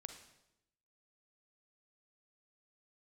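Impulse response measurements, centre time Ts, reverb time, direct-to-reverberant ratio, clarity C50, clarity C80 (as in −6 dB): 19 ms, 0.85 s, 6.0 dB, 7.0 dB, 10.5 dB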